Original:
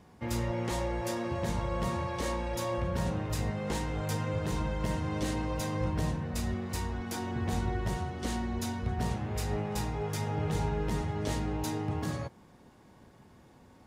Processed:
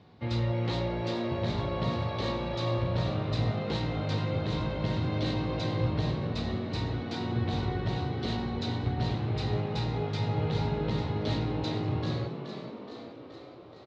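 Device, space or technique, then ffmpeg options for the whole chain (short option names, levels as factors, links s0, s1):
frequency-shifting delay pedal into a guitar cabinet: -filter_complex "[0:a]asplit=9[s0][s1][s2][s3][s4][s5][s6][s7][s8];[s1]adelay=424,afreqshift=58,volume=0.376[s9];[s2]adelay=848,afreqshift=116,volume=0.232[s10];[s3]adelay=1272,afreqshift=174,volume=0.145[s11];[s4]adelay=1696,afreqshift=232,volume=0.0891[s12];[s5]adelay=2120,afreqshift=290,volume=0.0556[s13];[s6]adelay=2544,afreqshift=348,volume=0.0343[s14];[s7]adelay=2968,afreqshift=406,volume=0.0214[s15];[s8]adelay=3392,afreqshift=464,volume=0.0132[s16];[s0][s9][s10][s11][s12][s13][s14][s15][s16]amix=inputs=9:normalize=0,highpass=75,equalizer=f=120:t=q:w=4:g=7,equalizer=f=200:t=q:w=4:g=-3,equalizer=f=970:t=q:w=4:g=-4,equalizer=f=1700:t=q:w=4:g=-4,equalizer=f=4000:t=q:w=4:g=10,lowpass=f=4400:w=0.5412,lowpass=f=4400:w=1.3066,volume=1.12"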